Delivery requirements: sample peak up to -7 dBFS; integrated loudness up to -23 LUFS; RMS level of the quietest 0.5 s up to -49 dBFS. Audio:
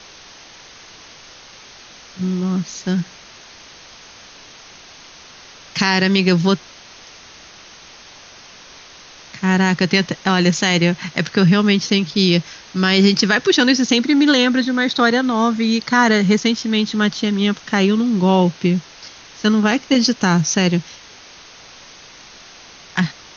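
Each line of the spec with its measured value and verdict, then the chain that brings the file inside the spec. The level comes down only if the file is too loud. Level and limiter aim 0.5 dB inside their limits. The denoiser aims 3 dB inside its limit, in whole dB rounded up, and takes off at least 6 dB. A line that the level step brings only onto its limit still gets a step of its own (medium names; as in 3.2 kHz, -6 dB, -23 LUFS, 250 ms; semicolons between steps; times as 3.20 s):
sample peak -2.0 dBFS: fail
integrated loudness -16.5 LUFS: fail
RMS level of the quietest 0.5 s -42 dBFS: fail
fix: noise reduction 6 dB, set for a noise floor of -42 dBFS; trim -7 dB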